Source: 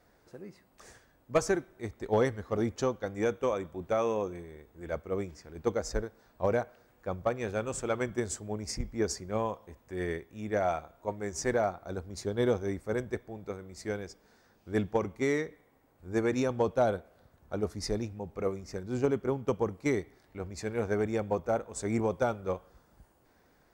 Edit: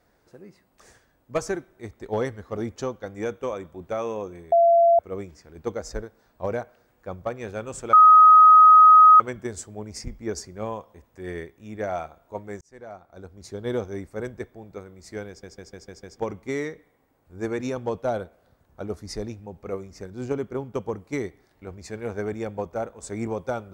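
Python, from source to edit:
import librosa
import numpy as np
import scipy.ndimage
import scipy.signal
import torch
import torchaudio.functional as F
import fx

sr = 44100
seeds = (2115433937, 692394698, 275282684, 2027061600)

y = fx.edit(x, sr, fx.bleep(start_s=4.52, length_s=0.47, hz=680.0, db=-13.0),
    fx.insert_tone(at_s=7.93, length_s=1.27, hz=1260.0, db=-8.0),
    fx.fade_in_span(start_s=11.34, length_s=1.13),
    fx.stutter_over(start_s=14.01, slice_s=0.15, count=6), tone=tone)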